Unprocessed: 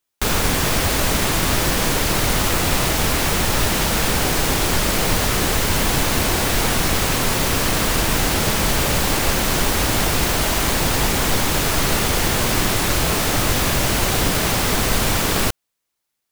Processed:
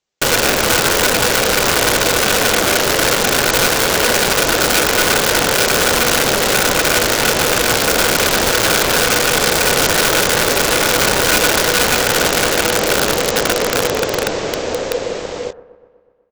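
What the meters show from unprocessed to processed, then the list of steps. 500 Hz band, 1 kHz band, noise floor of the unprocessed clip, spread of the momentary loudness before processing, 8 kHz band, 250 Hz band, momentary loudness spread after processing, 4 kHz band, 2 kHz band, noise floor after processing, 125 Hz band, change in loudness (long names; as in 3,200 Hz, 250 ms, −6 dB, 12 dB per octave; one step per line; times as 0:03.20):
+8.0 dB, +5.0 dB, −78 dBFS, 0 LU, +5.0 dB, +1.0 dB, 5 LU, +6.0 dB, +7.5 dB, −44 dBFS, −4.0 dB, +5.0 dB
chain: fade-out on the ending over 4.35 s
low-shelf EQ 180 Hz +8 dB
double-tracking delay 21 ms −12.5 dB
on a send: delay with a low-pass on its return 123 ms, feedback 63%, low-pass 1,100 Hz, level −18 dB
on the sum: downsampling to 16,000 Hz
in parallel at −1 dB: brickwall limiter −9 dBFS, peak gain reduction 7.5 dB
on the sum: ring modulation 490 Hz
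wrap-around overflow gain 7.5 dB
hum removal 89.91 Hz, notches 20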